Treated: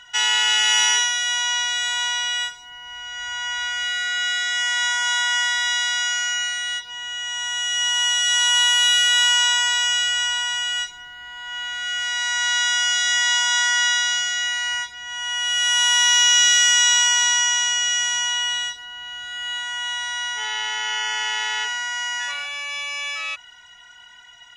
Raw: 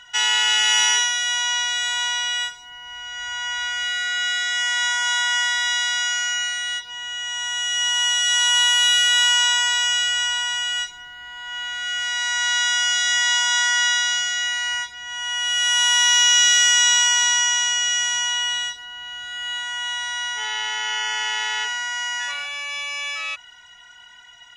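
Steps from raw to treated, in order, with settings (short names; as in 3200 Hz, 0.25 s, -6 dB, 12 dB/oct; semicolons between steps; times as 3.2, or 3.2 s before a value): 16.5–16.95 HPF 280 Hz 6 dB/oct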